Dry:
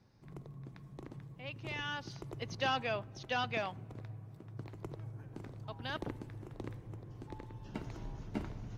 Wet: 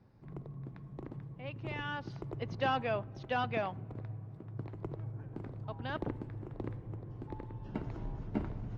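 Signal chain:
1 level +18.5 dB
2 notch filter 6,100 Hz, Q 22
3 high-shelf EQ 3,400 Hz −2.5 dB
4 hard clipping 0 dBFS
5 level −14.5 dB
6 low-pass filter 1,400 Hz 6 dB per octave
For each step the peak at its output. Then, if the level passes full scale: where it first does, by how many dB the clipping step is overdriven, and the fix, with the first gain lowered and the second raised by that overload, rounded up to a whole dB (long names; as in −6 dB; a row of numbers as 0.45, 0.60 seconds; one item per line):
−3.5, −3.5, −4.0, −4.0, −18.5, −19.5 dBFS
no step passes full scale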